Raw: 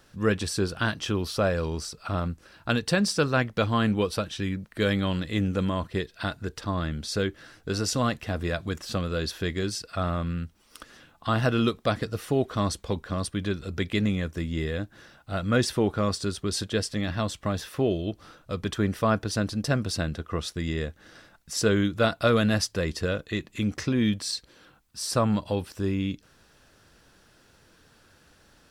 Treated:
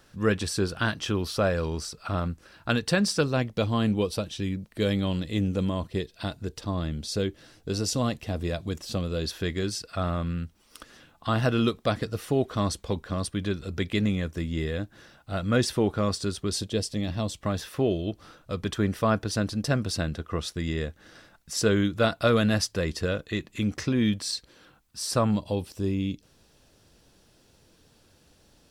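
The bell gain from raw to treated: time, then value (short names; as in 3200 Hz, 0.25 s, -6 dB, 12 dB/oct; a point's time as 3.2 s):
bell 1500 Hz 1.1 oct
0 dB
from 3.21 s -9 dB
from 9.25 s -2 dB
from 16.57 s -11.5 dB
from 17.41 s -1 dB
from 25.31 s -10 dB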